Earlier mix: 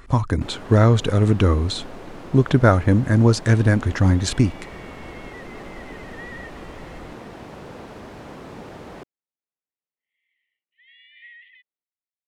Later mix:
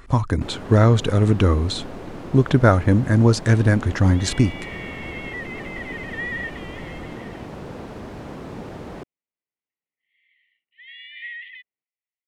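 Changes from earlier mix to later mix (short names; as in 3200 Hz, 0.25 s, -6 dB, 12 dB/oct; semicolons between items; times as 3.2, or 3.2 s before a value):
first sound: add low shelf 410 Hz +6 dB; second sound +10.5 dB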